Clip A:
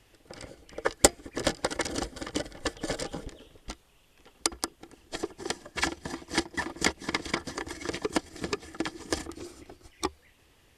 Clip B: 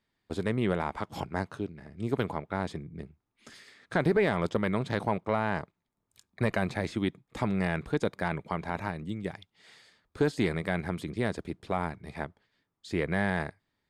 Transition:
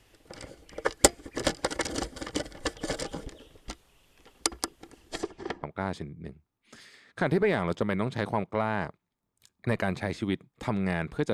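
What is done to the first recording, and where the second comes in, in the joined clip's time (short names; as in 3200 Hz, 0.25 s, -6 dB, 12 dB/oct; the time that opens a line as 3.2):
clip A
5.19–5.63 LPF 12000 Hz -> 1100 Hz
5.63 switch to clip B from 2.37 s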